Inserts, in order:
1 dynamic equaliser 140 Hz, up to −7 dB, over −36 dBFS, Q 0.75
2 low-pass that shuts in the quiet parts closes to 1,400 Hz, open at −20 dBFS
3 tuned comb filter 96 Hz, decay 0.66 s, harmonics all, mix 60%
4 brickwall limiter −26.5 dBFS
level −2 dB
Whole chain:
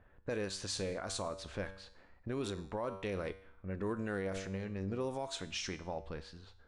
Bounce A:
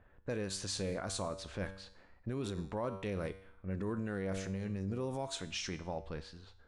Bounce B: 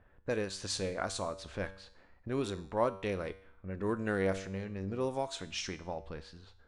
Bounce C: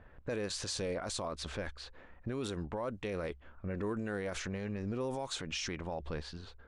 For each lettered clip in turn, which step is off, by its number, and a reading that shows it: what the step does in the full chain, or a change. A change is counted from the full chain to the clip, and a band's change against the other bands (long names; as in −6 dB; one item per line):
1, 125 Hz band +3.0 dB
4, change in crest factor +8.5 dB
3, change in momentary loudness spread −3 LU